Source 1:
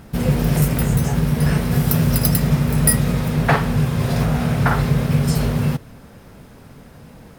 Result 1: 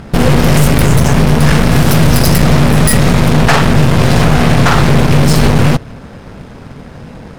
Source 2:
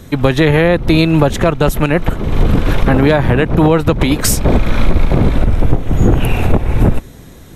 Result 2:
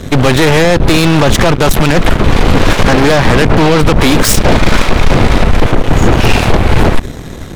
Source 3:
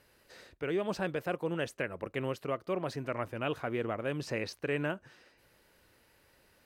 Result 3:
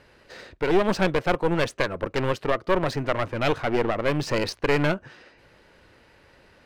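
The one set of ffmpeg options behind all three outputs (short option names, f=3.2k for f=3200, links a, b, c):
-af "apsyclip=16dB,adynamicsmooth=sensitivity=8:basefreq=4.7k,aeval=exprs='1.06*(cos(1*acos(clip(val(0)/1.06,-1,1)))-cos(1*PI/2))+0.335*(cos(4*acos(clip(val(0)/1.06,-1,1)))-cos(4*PI/2))':c=same,volume=-4.5dB"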